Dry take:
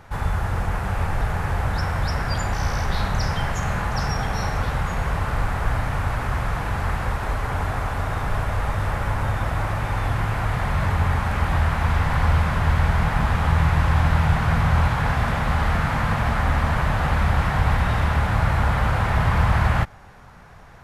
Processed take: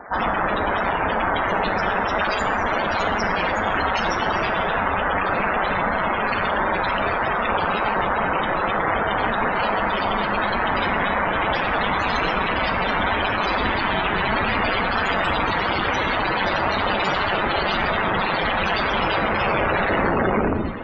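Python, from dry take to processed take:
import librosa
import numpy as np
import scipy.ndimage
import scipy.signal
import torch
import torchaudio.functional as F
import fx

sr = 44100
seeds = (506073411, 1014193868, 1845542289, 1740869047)

p1 = fx.tape_stop_end(x, sr, length_s=2.03)
p2 = scipy.signal.sosfilt(scipy.signal.butter(2, 250.0, 'highpass', fs=sr, output='sos'), p1)
p3 = fx.high_shelf(p2, sr, hz=4300.0, db=-9.5)
p4 = fx.hum_notches(p3, sr, base_hz=50, count=9)
p5 = fx.rider(p4, sr, range_db=10, speed_s=2.0)
p6 = p4 + F.gain(torch.from_numpy(p5), 0.0).numpy()
p7 = (np.mod(10.0 ** (16.5 / 20.0) * p6 + 1.0, 2.0) - 1.0) / 10.0 ** (16.5 / 20.0)
p8 = p7 + fx.echo_diffused(p7, sr, ms=664, feedback_pct=49, wet_db=-14, dry=0)
p9 = p8 * np.sin(2.0 * np.pi * 99.0 * np.arange(len(p8)) / sr)
p10 = fx.spec_topn(p9, sr, count=64)
p11 = fx.rev_double_slope(p10, sr, seeds[0], early_s=0.83, late_s=3.2, knee_db=-27, drr_db=8.5)
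y = F.gain(torch.from_numpy(p11), 6.0).numpy()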